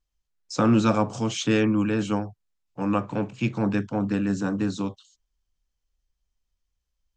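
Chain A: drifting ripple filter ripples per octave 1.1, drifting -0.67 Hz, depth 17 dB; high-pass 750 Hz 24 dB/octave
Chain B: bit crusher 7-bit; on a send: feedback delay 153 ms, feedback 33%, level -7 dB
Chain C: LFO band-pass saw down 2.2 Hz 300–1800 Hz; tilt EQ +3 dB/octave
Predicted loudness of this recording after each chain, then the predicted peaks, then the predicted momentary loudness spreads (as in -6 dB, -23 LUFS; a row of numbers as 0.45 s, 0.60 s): -30.5 LUFS, -24.5 LUFS, -37.5 LUFS; -11.0 dBFS, -7.5 dBFS, -16.0 dBFS; 12 LU, 13 LU, 12 LU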